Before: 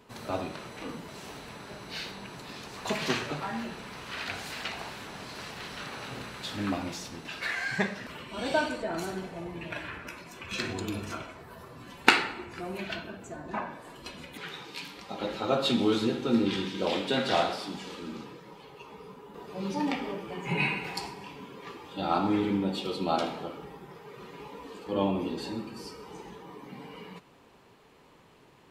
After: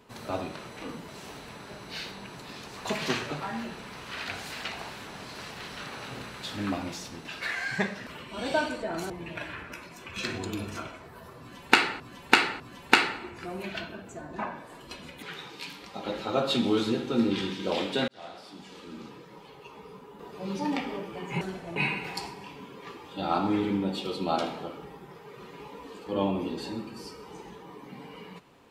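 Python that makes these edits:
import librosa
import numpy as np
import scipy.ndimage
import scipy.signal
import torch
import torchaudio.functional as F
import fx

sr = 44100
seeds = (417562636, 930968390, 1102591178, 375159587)

y = fx.edit(x, sr, fx.move(start_s=9.1, length_s=0.35, to_s=20.56),
    fx.repeat(start_s=11.75, length_s=0.6, count=3),
    fx.fade_in_span(start_s=17.23, length_s=1.28), tone=tone)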